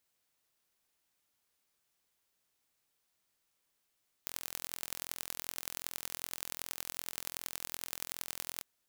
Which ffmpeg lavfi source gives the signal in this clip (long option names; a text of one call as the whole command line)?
ffmpeg -f lavfi -i "aevalsrc='0.355*eq(mod(n,1035),0)*(0.5+0.5*eq(mod(n,4140),0))':duration=4.35:sample_rate=44100" out.wav